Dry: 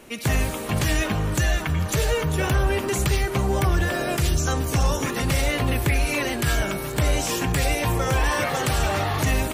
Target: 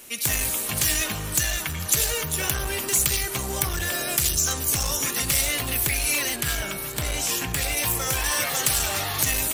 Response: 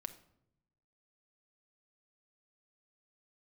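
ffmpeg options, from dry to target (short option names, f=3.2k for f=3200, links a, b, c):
-filter_complex "[0:a]asettb=1/sr,asplit=3[a][b][c];[a]atrim=end=6.364[d];[b]atrim=start=6.36:end=7.77,asetpts=PTS-STARTPTS,afade=t=in:d=0.004:c=qsin,afade=t=out:st=1.406:d=0.004:c=qsin,bass=f=250:g=1,treble=f=4k:g=-7[e];[c]atrim=start=7.766[f];[d][e]acrossfade=d=0.004:c1=hsin:c2=qsin[g];[g][f]acrossfade=d=0.004:c1=qsin:c2=hsin,aeval=exprs='clip(val(0),-1,0.112)':c=same,crystalizer=i=7.5:c=0,volume=-8.5dB"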